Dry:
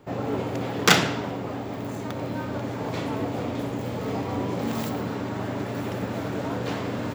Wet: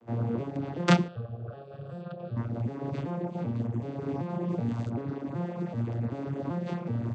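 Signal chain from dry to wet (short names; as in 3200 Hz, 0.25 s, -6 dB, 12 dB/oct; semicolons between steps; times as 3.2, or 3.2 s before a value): arpeggiated vocoder minor triad, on A#2, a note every 0.382 s; reverb removal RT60 0.91 s; 1.08–2.37 fixed phaser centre 1400 Hz, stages 8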